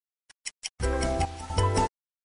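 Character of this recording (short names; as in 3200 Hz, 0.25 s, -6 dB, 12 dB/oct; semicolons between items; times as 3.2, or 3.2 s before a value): random-step tremolo 4 Hz, depth 85%; a quantiser's noise floor 8-bit, dither none; MP3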